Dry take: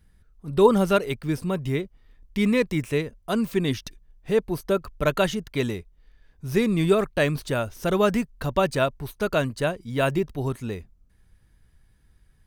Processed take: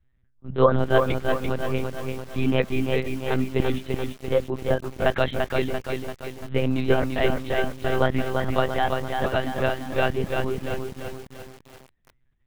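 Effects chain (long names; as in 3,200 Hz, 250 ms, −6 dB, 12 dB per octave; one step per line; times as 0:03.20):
pitch shifter swept by a sawtooth +3.5 semitones, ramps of 370 ms
noise reduction from a noise print of the clip's start 7 dB
one-pitch LPC vocoder at 8 kHz 130 Hz
feedback echo at a low word length 341 ms, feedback 55%, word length 7 bits, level −4 dB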